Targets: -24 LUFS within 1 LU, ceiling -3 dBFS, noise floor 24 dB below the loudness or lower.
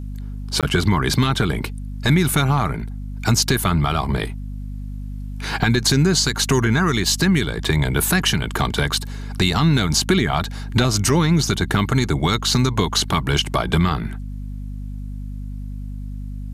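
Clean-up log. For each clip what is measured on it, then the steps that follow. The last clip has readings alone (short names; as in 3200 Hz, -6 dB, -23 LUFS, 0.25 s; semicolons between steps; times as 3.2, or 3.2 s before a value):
dropouts 1; longest dropout 17 ms; hum 50 Hz; harmonics up to 250 Hz; hum level -27 dBFS; loudness -19.0 LUFS; peak -5.0 dBFS; loudness target -24.0 LUFS
-> interpolate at 0.61, 17 ms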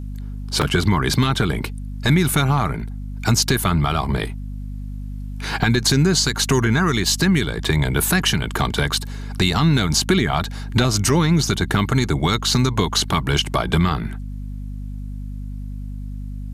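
dropouts 0; hum 50 Hz; harmonics up to 250 Hz; hum level -27 dBFS
-> notches 50/100/150/200/250 Hz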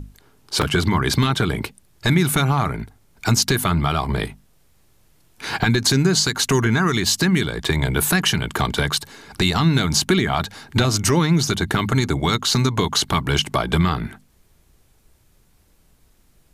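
hum none; loudness -19.5 LUFS; peak -5.0 dBFS; loudness target -24.0 LUFS
-> gain -4.5 dB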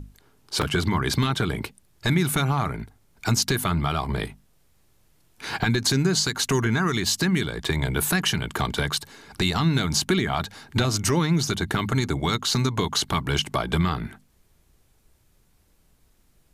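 loudness -24.0 LUFS; peak -9.5 dBFS; noise floor -62 dBFS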